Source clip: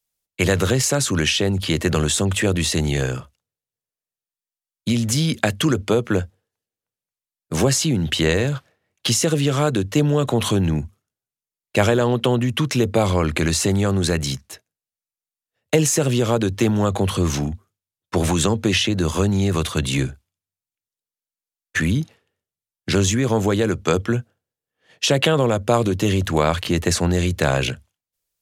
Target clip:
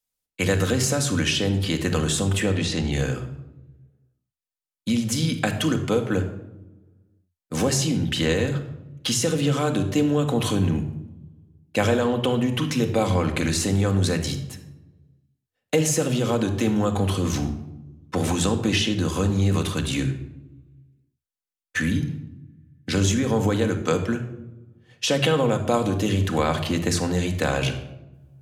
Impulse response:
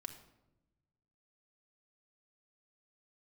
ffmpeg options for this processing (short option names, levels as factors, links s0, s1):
-filter_complex "[0:a]asplit=3[s0][s1][s2];[s0]afade=t=out:st=2.42:d=0.02[s3];[s1]lowpass=5500,afade=t=in:st=2.42:d=0.02,afade=t=out:st=2.91:d=0.02[s4];[s2]afade=t=in:st=2.91:d=0.02[s5];[s3][s4][s5]amix=inputs=3:normalize=0[s6];[1:a]atrim=start_sample=2205[s7];[s6][s7]afir=irnorm=-1:irlink=0"